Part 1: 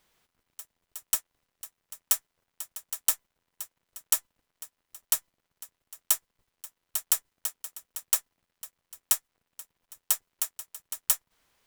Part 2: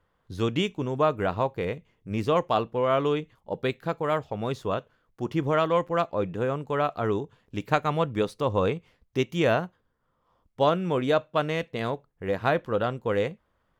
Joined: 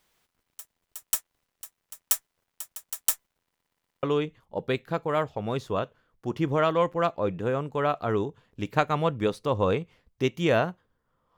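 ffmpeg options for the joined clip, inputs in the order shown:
-filter_complex "[0:a]apad=whole_dur=11.37,atrim=end=11.37,asplit=5[a][b][c][d][e];[a]atrim=end=3.552[f];[b]atrim=start=3.428:end=3.552[g];[c]atrim=start=3.428:end=3.552[h];[d]atrim=start=3.428:end=3.552[i];[e]atrim=start=3.428:end=3.552[j];[1:a]atrim=start=2.978:end=10.32[k];[f][g]acrossfade=d=0.004:c1=hsin:c2=hsin[l];[l][h]acrossfade=d=0.004:c1=hsin:c2=hsin[m];[m][i]acrossfade=d=0.004:c1=hsin:c2=hsin[n];[n][j]acrossfade=d=0.004:c1=hsin:c2=hsin[o];[o][k]acrossfade=d=0.004:c1=hsin:c2=hsin"

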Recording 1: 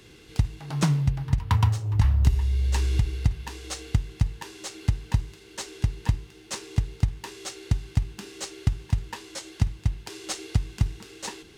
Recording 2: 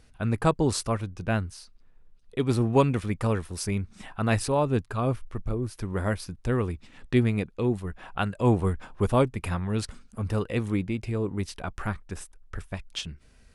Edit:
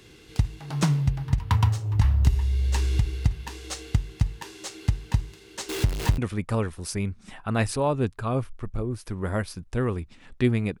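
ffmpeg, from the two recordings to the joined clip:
-filter_complex "[0:a]asettb=1/sr,asplit=3[a][b][c];[a]atrim=end=5.694[d];[b]atrim=start=5.69:end=6.18,asetpts=PTS-STARTPTS,afade=t=in:d=0.004:c=qsin,afade=t=out:st=0.486:d=0.004:c=qsin,aeval=exprs='val(0)+0.5*0.0501*sgn(val(0))':c=same[e];[c]atrim=start=6.176[f];[d][e]acrossfade=d=0.004:c1=hsin:c2=qsin[g];[g][f]acrossfade=d=0.004:c1=qsin:c2=hsin,apad=whole_dur=10.8,atrim=end=10.8,atrim=end=6.182[h];[1:a]atrim=start=2.898:end=7.52[i];[h][i]acrossfade=d=0.004:c1=hsin:c2=hsin"

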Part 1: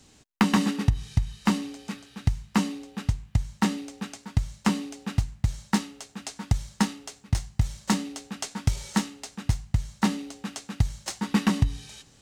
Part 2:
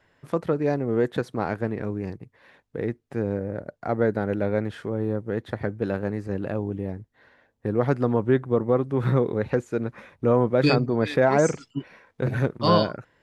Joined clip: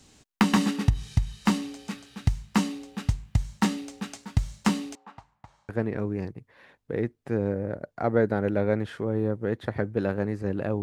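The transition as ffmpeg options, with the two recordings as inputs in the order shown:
-filter_complex "[0:a]asettb=1/sr,asplit=3[a][b][c];[a]atrim=end=4.954[d];[b]atrim=start=4.95:end=5.69,asetpts=PTS-STARTPTS,afade=t=in:d=0.004:c=qsin,afade=t=out:st=0.736:d=0.004:c=qsin,bandpass=f=940:t=q:w=2.9:csg=0[e];[c]atrim=start=5.686[f];[d][e]acrossfade=d=0.004:c1=hsin:c2=qsin[g];[g][f]acrossfade=d=0.004:c1=qsin:c2=hsin,apad=whole_dur=10.82,atrim=end=10.82,atrim=end=5.692[h];[1:a]atrim=start=1.538:end=6.67[i];[h][i]acrossfade=d=0.004:c1=hsin:c2=hsin"

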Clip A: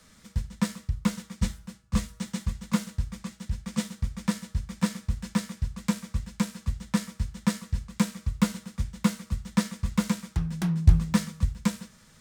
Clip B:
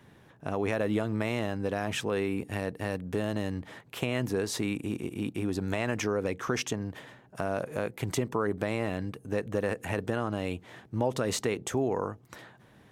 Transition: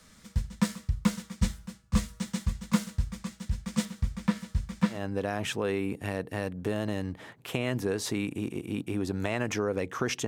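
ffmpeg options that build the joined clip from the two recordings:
-filter_complex "[0:a]asettb=1/sr,asplit=3[a][b][c];[a]atrim=end=3.854[d];[b]atrim=start=3.85:end=5.04,asetpts=PTS-STARTPTS,afade=t=in:d=0.004:c=qsin,afade=t=out:st=1.186:d=0.004:c=qsin,acrossover=split=3800[e][f];[f]acompressor=threshold=-51dB:ratio=4:attack=1:release=60[g];[e][g]amix=inputs=2:normalize=0[h];[c]atrim=start=5.036[i];[d][h]acrossfade=d=0.004:c1=hsin:c2=qsin[j];[j][i]acrossfade=d=0.004:c1=qsin:c2=hsin,apad=whole_dur=10.27,atrim=end=10.27,atrim=end=5.04,asetpts=PTS-STARTPTS[k];[1:a]atrim=start=1.36:end=6.75,asetpts=PTS-STARTPTS[l];[k][l]acrossfade=d=0.16:c1=tri:c2=tri"

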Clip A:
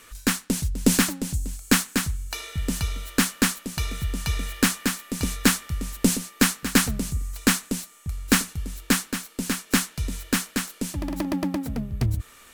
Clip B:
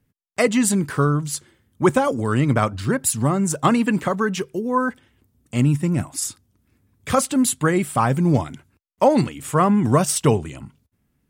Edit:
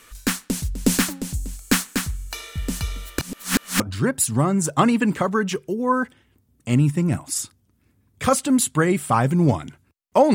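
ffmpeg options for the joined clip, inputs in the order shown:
-filter_complex "[0:a]apad=whole_dur=10.34,atrim=end=10.34,asplit=2[a][b];[a]atrim=end=3.192[c];[b]atrim=start=3.188:end=3.802,asetpts=PTS-STARTPTS,areverse[d];[1:a]atrim=start=2.658:end=9.2[e];[c][d]acrossfade=d=0.004:c1=hsin:c2=hsin[f];[f][e]acrossfade=d=0.004:c1=hsin:c2=hsin"

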